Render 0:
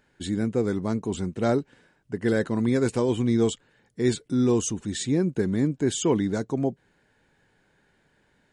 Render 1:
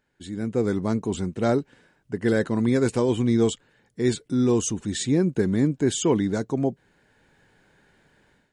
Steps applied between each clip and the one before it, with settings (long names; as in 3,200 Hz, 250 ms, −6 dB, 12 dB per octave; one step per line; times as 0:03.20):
automatic gain control gain up to 13.5 dB
level −8.5 dB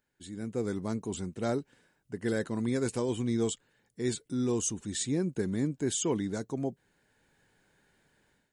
high-shelf EQ 6,900 Hz +12 dB
level −9 dB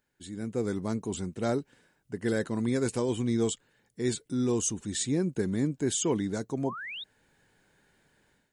sound drawn into the spectrogram rise, 0:06.65–0:07.04, 840–3,900 Hz −41 dBFS
level +2 dB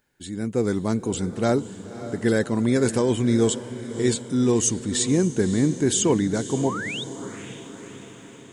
feedback delay with all-pass diffusion 558 ms, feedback 58%, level −13 dB
level +7.5 dB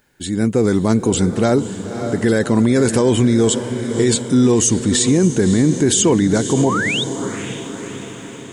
boost into a limiter +16 dB
level −5 dB